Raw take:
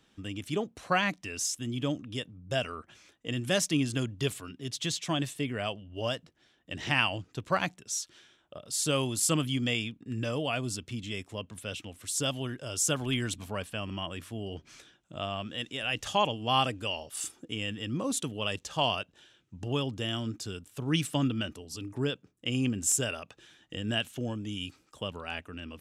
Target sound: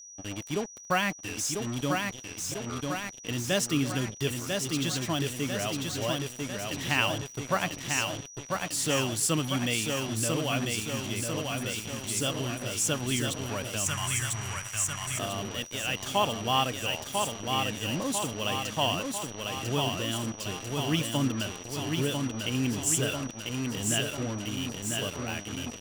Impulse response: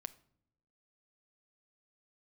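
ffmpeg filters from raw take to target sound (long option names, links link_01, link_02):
-filter_complex "[0:a]asettb=1/sr,asplit=3[link_01][link_02][link_03];[link_01]atrim=end=2.014[link_04];[link_02]atrim=start=2.01:end=2.7,asetpts=PTS-STARTPTS,afade=type=in:duration=0.004:curve=qsin,afade=type=out:start_time=0.686:duration=0.004:curve=qsin,acompressor=threshold=-41dB:ratio=12[link_05];[link_03]atrim=start=2.696[link_06];[link_04][link_05]acrossfade=duration=0.004:curve1=hsin:curve2=qsin[link_07];[link_07][link_06]acrossfade=duration=0.004:curve1=qsin:curve2=hsin,aecho=1:1:996|1992|2988|3984|4980|5976|6972|7968:0.631|0.372|0.22|0.13|0.0765|0.0451|0.0266|0.0157,acrusher=bits=5:mix=0:aa=0.5,aeval=exprs='val(0)+0.00562*sin(2*PI*5800*n/s)':channel_layout=same,asettb=1/sr,asplit=3[link_08][link_09][link_10];[link_08]atrim=end=13.864[link_11];[link_09]atrim=start=13.86:end=15.19,asetpts=PTS-STARTPTS,afade=type=in:duration=0.004:curve=qsin,afade=type=out:start_time=1.326:duration=0.004:curve=qsin,equalizer=frequency=125:width_type=o:width=1:gain=6,equalizer=frequency=250:width_type=o:width=1:gain=-12,equalizer=frequency=500:width_type=o:width=1:gain=-10,equalizer=frequency=1000:width_type=o:width=1:gain=5,equalizer=frequency=2000:width_type=o:width=1:gain=7,equalizer=frequency=4000:width_type=o:width=1:gain=-6,equalizer=frequency=8000:width_type=o:width=1:gain=10[link_12];[link_10]atrim=start=15.186[link_13];[link_11][link_12]acrossfade=duration=0.004:curve1=hsin:curve2=qsin[link_14];[link_14][link_13]acrossfade=duration=0.004:curve1=qsin:curve2=hsin"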